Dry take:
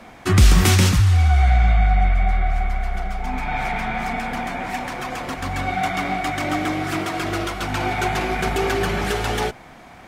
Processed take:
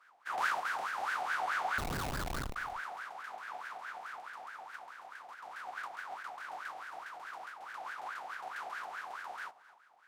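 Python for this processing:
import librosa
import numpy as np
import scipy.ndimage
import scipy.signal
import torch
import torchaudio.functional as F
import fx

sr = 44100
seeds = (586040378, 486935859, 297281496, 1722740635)

y = fx.spec_flatten(x, sr, power=0.11)
y = fx.wah_lfo(y, sr, hz=4.7, low_hz=730.0, high_hz=1600.0, q=11.0)
y = fx.schmitt(y, sr, flips_db=-30.5, at=(1.78, 2.56))
y = y + 10.0 ** (-19.0 / 20.0) * np.pad(y, (int(264 * sr / 1000.0), 0))[:len(y)]
y = y * 10.0 ** (-2.5 / 20.0)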